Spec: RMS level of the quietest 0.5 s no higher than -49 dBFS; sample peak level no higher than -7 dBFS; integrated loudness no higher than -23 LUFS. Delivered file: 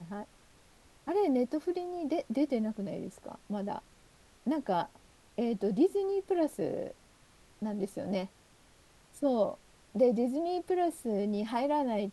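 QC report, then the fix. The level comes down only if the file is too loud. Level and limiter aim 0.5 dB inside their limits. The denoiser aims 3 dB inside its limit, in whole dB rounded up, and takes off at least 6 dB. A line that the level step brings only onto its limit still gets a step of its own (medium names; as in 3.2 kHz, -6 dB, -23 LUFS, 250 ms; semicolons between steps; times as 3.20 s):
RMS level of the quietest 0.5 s -62 dBFS: pass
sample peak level -16.0 dBFS: pass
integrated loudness -32.5 LUFS: pass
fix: none needed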